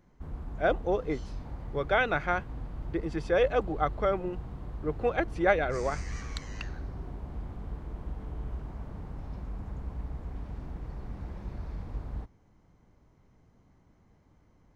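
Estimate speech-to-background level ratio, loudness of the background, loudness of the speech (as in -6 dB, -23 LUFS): 11.0 dB, -41.0 LUFS, -30.0 LUFS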